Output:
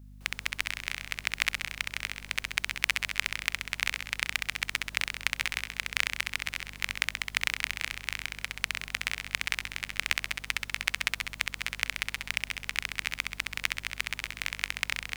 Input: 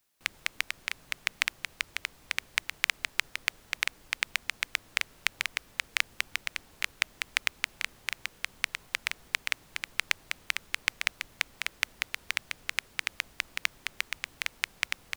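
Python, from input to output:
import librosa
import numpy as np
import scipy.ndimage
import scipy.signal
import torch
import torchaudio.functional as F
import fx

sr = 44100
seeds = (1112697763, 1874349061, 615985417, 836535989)

y = fx.room_flutter(x, sr, wall_m=11.2, rt60_s=0.97)
y = fx.add_hum(y, sr, base_hz=50, snr_db=15)
y = y * 10.0 ** (-1.0 / 20.0)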